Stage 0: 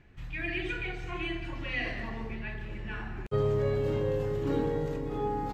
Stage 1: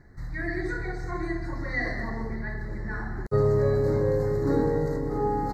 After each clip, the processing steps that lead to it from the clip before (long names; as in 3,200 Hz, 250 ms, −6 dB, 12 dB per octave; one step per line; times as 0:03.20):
elliptic band-stop filter 2,000–4,100 Hz, stop band 40 dB
level +5.5 dB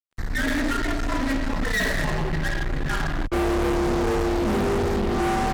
frequency shifter −67 Hz
fuzz pedal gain 36 dB, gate −43 dBFS
level −7.5 dB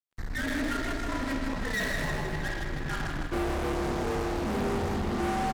repeating echo 157 ms, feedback 57%, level −6.5 dB
level −7 dB